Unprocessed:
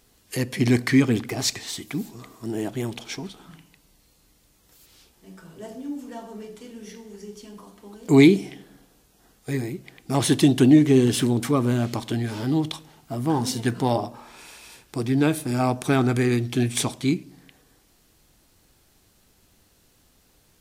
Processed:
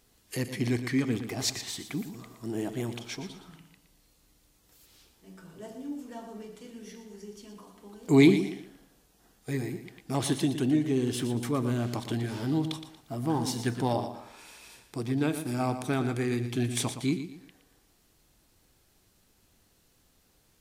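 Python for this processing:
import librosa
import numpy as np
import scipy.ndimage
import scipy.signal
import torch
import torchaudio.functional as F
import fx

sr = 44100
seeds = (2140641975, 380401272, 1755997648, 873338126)

p1 = fx.rider(x, sr, range_db=3, speed_s=0.5)
p2 = p1 + fx.echo_feedback(p1, sr, ms=117, feedback_pct=32, wet_db=-10.5, dry=0)
y = F.gain(torch.from_numpy(p2), -8.0).numpy()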